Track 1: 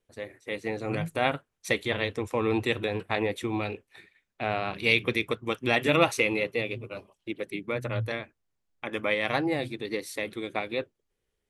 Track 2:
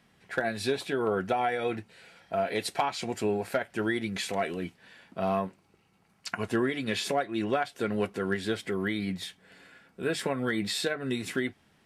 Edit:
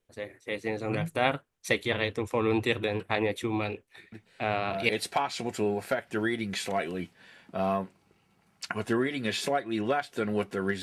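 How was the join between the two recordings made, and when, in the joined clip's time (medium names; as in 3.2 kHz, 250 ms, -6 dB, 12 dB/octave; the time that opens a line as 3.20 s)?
track 1
4.12 s: add track 2 from 1.75 s 0.77 s -7 dB
4.89 s: go over to track 2 from 2.52 s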